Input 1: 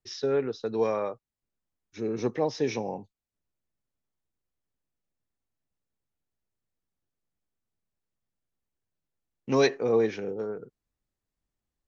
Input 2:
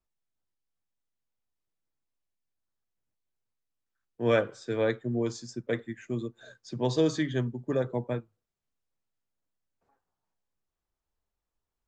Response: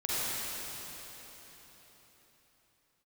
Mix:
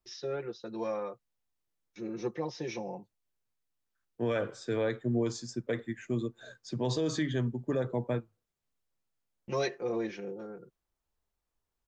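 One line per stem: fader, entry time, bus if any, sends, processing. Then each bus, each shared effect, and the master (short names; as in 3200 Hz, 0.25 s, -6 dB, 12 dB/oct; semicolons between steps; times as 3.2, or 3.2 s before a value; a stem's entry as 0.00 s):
-9.0 dB, 0.00 s, no send, comb 5.7 ms, depth 93%; gate with hold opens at -42 dBFS
+1.0 dB, 0.00 s, no send, dry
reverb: off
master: limiter -21.5 dBFS, peak gain reduction 10.5 dB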